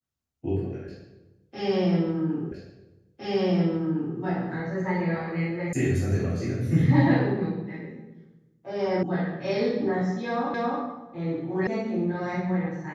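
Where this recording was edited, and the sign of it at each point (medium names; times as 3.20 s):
2.52 s: repeat of the last 1.66 s
5.73 s: sound stops dead
9.03 s: sound stops dead
10.54 s: repeat of the last 0.27 s
11.67 s: sound stops dead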